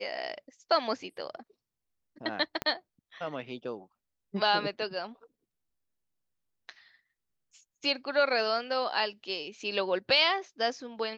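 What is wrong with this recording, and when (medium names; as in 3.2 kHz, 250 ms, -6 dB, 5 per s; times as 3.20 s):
2.62 s: pop -16 dBFS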